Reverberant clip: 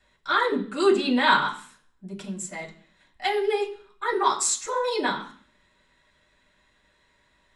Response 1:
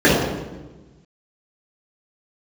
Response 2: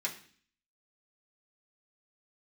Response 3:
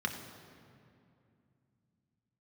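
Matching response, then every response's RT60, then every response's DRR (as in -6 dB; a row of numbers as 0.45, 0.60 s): 2; 1.2, 0.45, 2.5 s; -10.0, -4.5, 2.5 dB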